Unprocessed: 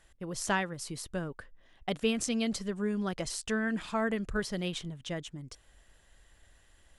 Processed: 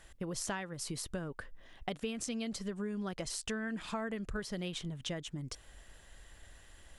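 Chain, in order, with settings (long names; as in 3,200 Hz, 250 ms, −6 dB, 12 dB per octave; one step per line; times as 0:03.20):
downward compressor 5 to 1, threshold −42 dBFS, peak gain reduction 16.5 dB
level +5.5 dB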